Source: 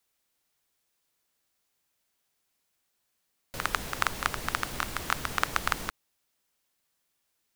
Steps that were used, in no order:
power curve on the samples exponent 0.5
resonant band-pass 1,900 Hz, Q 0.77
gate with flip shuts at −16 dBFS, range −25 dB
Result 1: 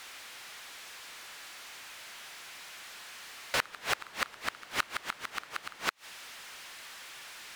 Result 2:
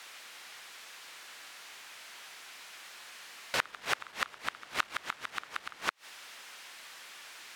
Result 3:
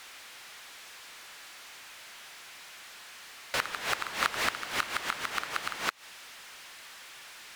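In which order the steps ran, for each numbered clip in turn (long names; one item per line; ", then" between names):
resonant band-pass, then power curve on the samples, then gate with flip
power curve on the samples, then resonant band-pass, then gate with flip
resonant band-pass, then gate with flip, then power curve on the samples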